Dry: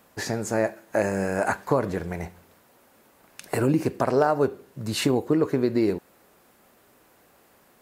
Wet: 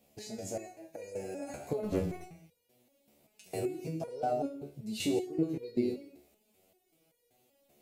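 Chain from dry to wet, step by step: high-order bell 1.3 kHz -15.5 dB 1.2 oct; gated-style reverb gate 240 ms flat, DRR 8.5 dB; 1.83–2.24 s: waveshaping leveller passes 2; resonator arpeggio 5.2 Hz 72–480 Hz

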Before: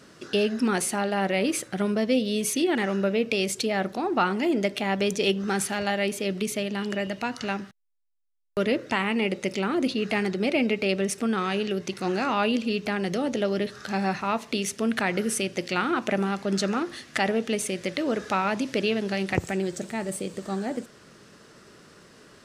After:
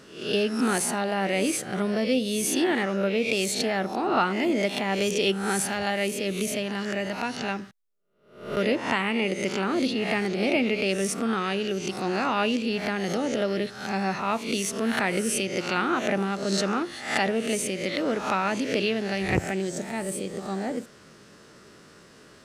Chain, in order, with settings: reverse spectral sustain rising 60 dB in 0.54 s; trim -1.5 dB

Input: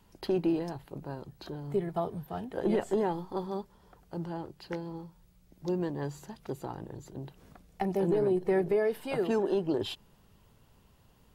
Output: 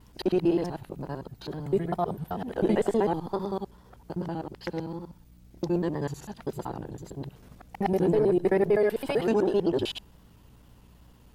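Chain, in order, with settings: time reversed locally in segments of 64 ms; wow and flutter 67 cents; hum 60 Hz, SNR 28 dB; trim +4.5 dB

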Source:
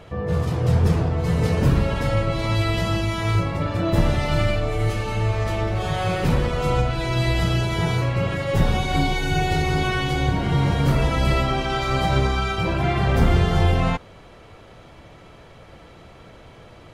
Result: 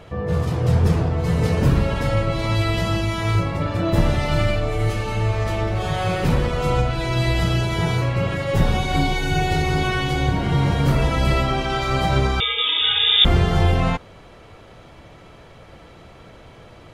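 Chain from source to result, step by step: 12.40–13.25 s: frequency inversion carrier 3.6 kHz; trim +1 dB

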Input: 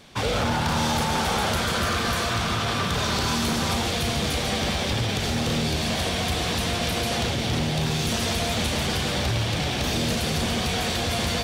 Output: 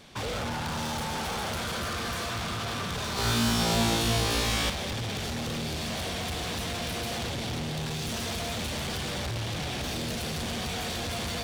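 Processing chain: saturation -28 dBFS, distortion -11 dB; 3.15–4.70 s: flutter echo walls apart 3 m, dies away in 0.95 s; trim -2 dB

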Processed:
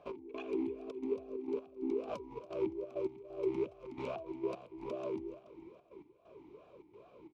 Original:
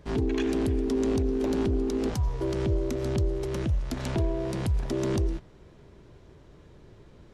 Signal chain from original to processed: peak limiter -25 dBFS, peak gain reduction 7.5 dB; compressor with a negative ratio -33 dBFS, ratio -0.5; trance gate "x..xxxxx.xxx." 132 bpm -12 dB; feedback delay 283 ms, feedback 40%, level -16 dB; talking filter a-u 2.4 Hz; trim +7 dB

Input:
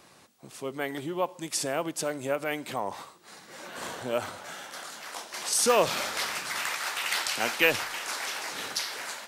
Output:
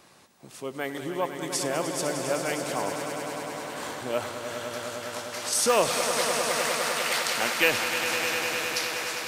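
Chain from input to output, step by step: echo with a slow build-up 101 ms, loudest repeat 5, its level -10 dB

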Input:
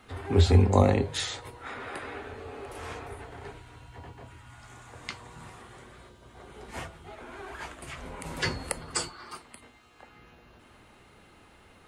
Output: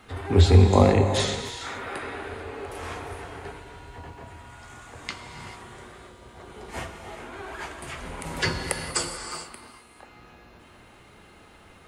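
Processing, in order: gated-style reverb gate 470 ms flat, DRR 5.5 dB; trim +3.5 dB

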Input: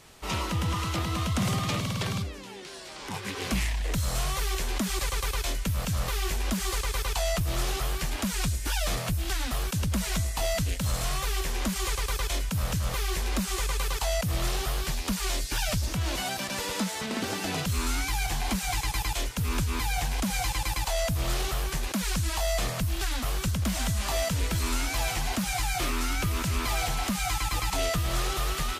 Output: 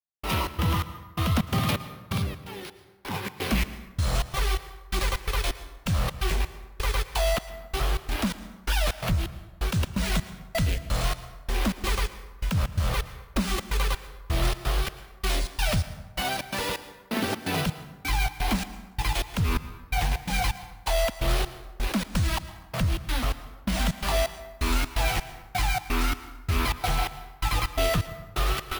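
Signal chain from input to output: low-pass 5 kHz 12 dB/octave; de-hum 63.82 Hz, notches 34; trance gate "..xx.xx." 128 bpm -60 dB; plate-style reverb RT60 1.2 s, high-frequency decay 0.55×, pre-delay 100 ms, DRR 13.5 dB; careless resampling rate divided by 3×, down none, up hold; trim +4.5 dB

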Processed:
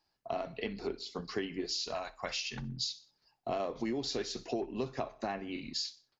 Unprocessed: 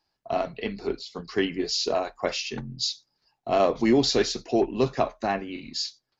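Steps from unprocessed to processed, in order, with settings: 1.66–2.62 s: peaking EQ 370 Hz -14 dB 1.5 oct; feedback delay 62 ms, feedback 40%, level -22 dB; compression 6:1, threshold -30 dBFS, peak gain reduction 14 dB; trim -2.5 dB

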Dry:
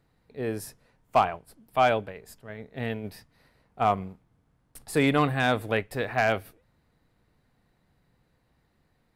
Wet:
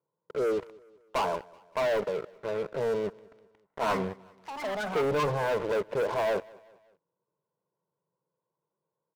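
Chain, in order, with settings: CVSD coder 64 kbps; Chebyshev band-pass 160–1100 Hz, order 3; bass shelf 210 Hz -5 dB; comb 2 ms, depth 84%; waveshaping leveller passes 5; peak limiter -20.5 dBFS, peak gain reduction 10.5 dB; 3.09–5.49 s: ever faster or slower copies 229 ms, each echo +6 st, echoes 2, each echo -6 dB; feedback delay 190 ms, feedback 47%, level -23.5 dB; trim -3.5 dB

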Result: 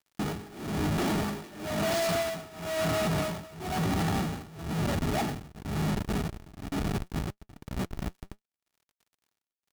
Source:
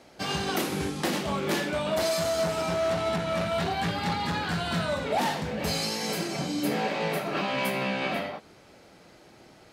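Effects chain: Doppler pass-by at 2.37 s, 18 m/s, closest 14 m; bass shelf 340 Hz +7.5 dB; de-hum 130.5 Hz, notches 2; Schmitt trigger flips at -35 dBFS; crackle 52 per s -56 dBFS; tremolo 1 Hz, depth 94%; sine folder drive 5 dB, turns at -26 dBFS; short-mantissa float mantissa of 2-bit; comb of notches 520 Hz

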